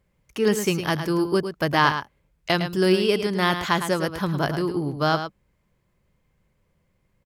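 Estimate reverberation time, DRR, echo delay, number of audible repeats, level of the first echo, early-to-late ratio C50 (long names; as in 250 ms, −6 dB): no reverb audible, no reverb audible, 108 ms, 1, −9.0 dB, no reverb audible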